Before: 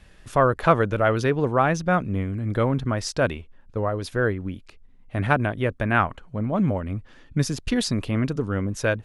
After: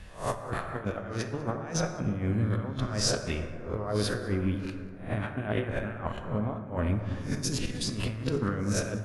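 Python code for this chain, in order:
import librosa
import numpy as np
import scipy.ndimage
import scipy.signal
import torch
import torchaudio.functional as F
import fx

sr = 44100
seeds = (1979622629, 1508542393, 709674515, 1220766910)

y = fx.spec_swells(x, sr, rise_s=0.39)
y = fx.over_compress(y, sr, threshold_db=-27.0, ratio=-0.5)
y = y + 10.0 ** (-22.5 / 20.0) * np.pad(y, (int(194 * sr / 1000.0), 0))[:len(y)]
y = fx.rev_plate(y, sr, seeds[0], rt60_s=2.8, hf_ratio=0.3, predelay_ms=0, drr_db=5.0)
y = fx.am_noise(y, sr, seeds[1], hz=5.7, depth_pct=55)
y = y * librosa.db_to_amplitude(-2.5)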